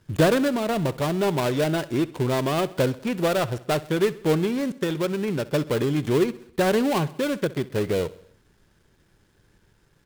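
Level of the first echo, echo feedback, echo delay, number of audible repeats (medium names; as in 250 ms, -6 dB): -19.0 dB, 55%, 65 ms, 4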